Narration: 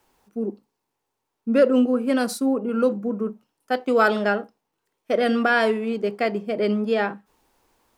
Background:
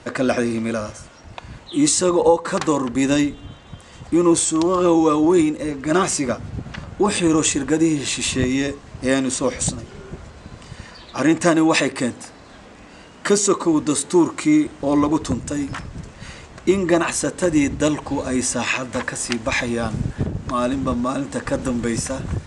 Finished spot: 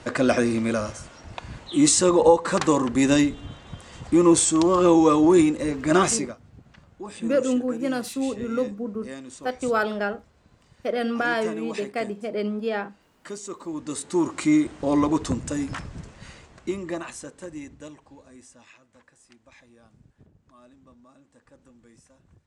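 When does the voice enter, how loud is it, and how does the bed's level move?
5.75 s, -5.0 dB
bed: 6.14 s -1 dB
6.36 s -19.5 dB
13.44 s -19.5 dB
14.42 s -3.5 dB
15.85 s -3.5 dB
18.85 s -32.5 dB

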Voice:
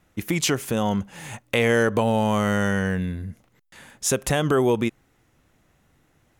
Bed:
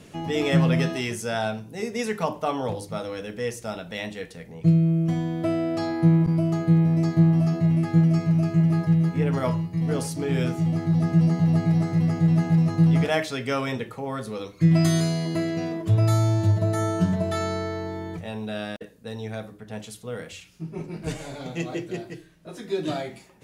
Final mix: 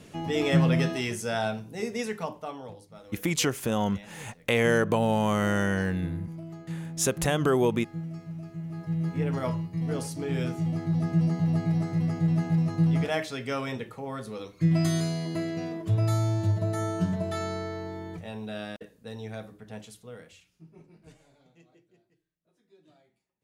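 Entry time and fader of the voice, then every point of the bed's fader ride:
2.95 s, -3.5 dB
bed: 1.9 s -2 dB
2.88 s -17.5 dB
8.65 s -17.5 dB
9.12 s -5 dB
19.69 s -5 dB
21.91 s -33 dB

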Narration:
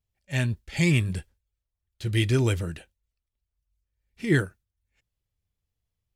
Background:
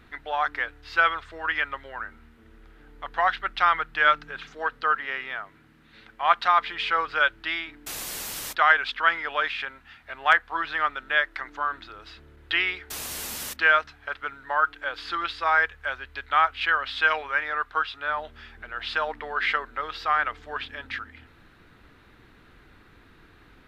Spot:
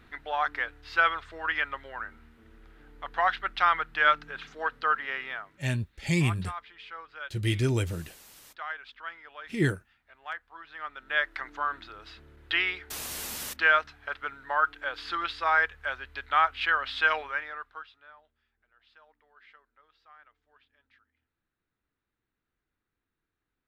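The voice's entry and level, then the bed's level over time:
5.30 s, -3.5 dB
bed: 5.31 s -2.5 dB
6.01 s -18.5 dB
10.66 s -18.5 dB
11.24 s -2.5 dB
17.2 s -2.5 dB
18.39 s -32 dB

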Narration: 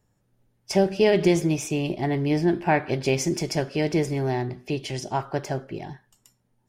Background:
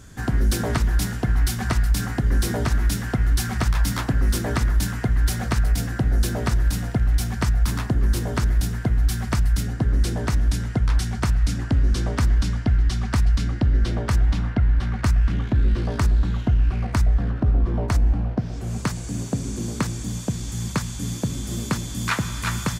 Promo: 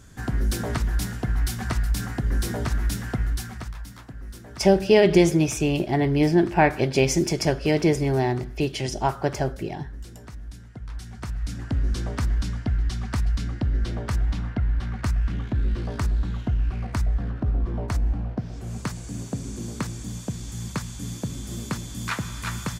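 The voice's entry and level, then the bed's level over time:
3.90 s, +3.0 dB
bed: 3.2 s -4 dB
3.9 s -18.5 dB
10.69 s -18.5 dB
11.76 s -5 dB

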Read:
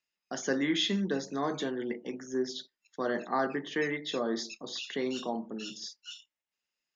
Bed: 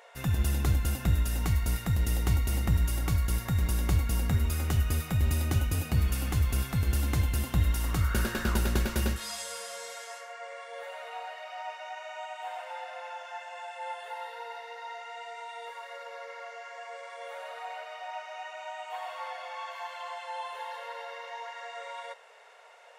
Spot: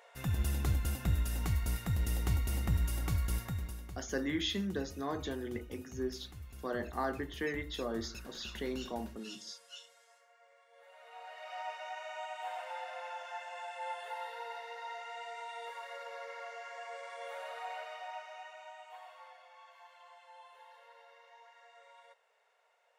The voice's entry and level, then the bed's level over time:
3.65 s, -5.5 dB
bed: 3.39 s -5.5 dB
3.97 s -22 dB
10.69 s -22 dB
11.54 s -2.5 dB
17.85 s -2.5 dB
19.49 s -18 dB

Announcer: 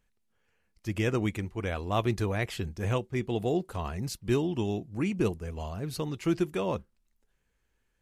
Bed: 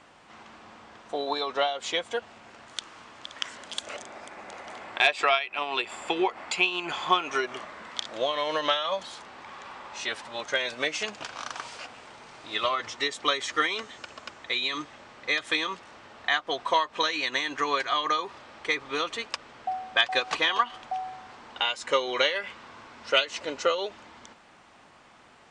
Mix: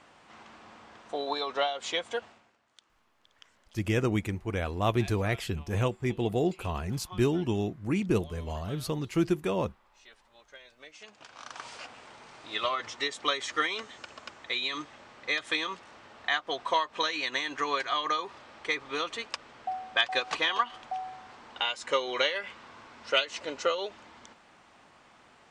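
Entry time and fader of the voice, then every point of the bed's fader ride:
2.90 s, +1.0 dB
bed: 2.25 s -2.5 dB
2.6 s -23.5 dB
10.79 s -23.5 dB
11.69 s -3 dB

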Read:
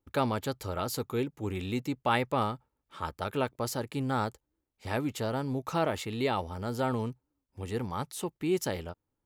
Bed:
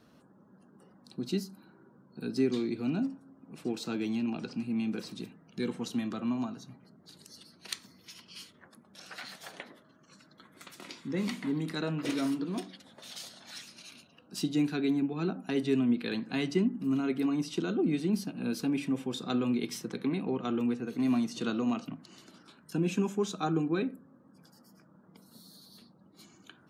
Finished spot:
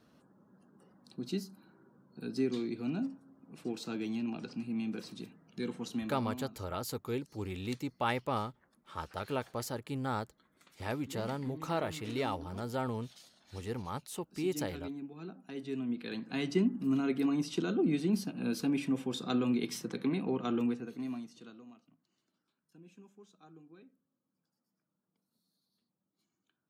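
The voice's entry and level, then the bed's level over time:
5.95 s, -5.0 dB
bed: 6.03 s -4 dB
6.53 s -13.5 dB
15.42 s -13.5 dB
16.61 s -1 dB
20.63 s -1 dB
21.81 s -27 dB

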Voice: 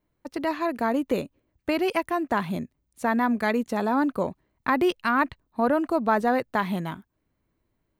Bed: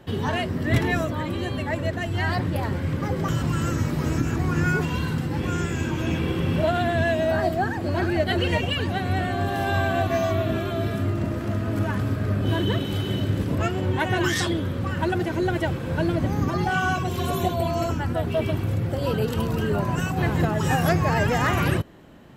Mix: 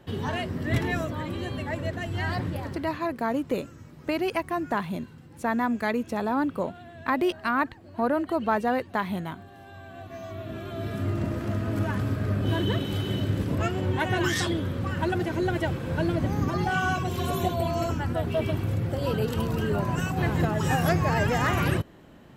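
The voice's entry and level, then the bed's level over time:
2.40 s, -2.5 dB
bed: 2.48 s -4.5 dB
3.21 s -22.5 dB
9.78 s -22.5 dB
11.13 s -2.5 dB

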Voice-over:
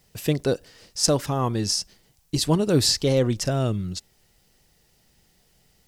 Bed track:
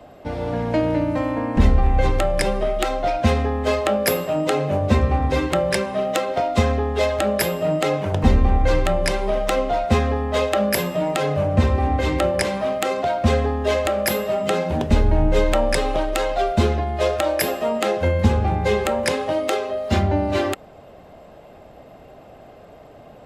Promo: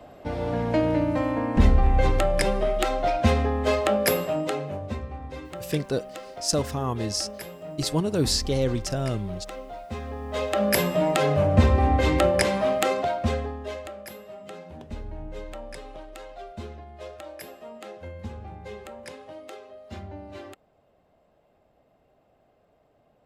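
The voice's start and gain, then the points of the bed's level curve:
5.45 s, -4.0 dB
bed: 4.23 s -2.5 dB
5.07 s -17.5 dB
9.91 s -17.5 dB
10.77 s -0.5 dB
12.84 s -0.5 dB
14.07 s -20 dB

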